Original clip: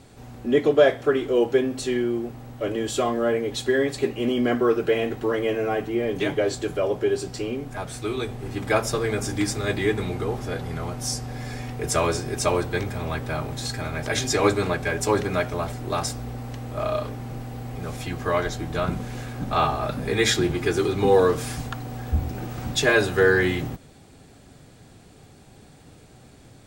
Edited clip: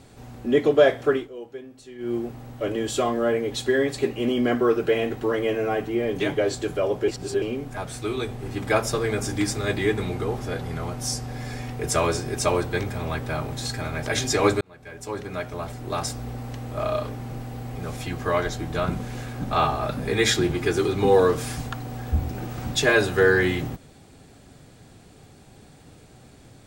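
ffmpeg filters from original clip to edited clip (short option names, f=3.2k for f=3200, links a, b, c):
-filter_complex "[0:a]asplit=6[a][b][c][d][e][f];[a]atrim=end=1.29,asetpts=PTS-STARTPTS,afade=t=out:st=1.13:d=0.16:silence=0.133352[g];[b]atrim=start=1.29:end=1.98,asetpts=PTS-STARTPTS,volume=-17.5dB[h];[c]atrim=start=1.98:end=7.082,asetpts=PTS-STARTPTS,afade=t=in:d=0.16:silence=0.133352[i];[d]atrim=start=7.078:end=7.422,asetpts=PTS-STARTPTS,areverse[j];[e]atrim=start=7.418:end=14.61,asetpts=PTS-STARTPTS,afade=t=out:st=7.188:d=0.004:c=hsin[k];[f]atrim=start=14.61,asetpts=PTS-STARTPTS,afade=t=in:d=1.67[l];[g][h][i]concat=n=3:v=0:a=1[m];[m][j]acrossfade=d=0.004:c1=hsin:c2=hsin[n];[k][l]concat=n=2:v=0:a=1[o];[n][o]acrossfade=d=0.004:c1=hsin:c2=hsin"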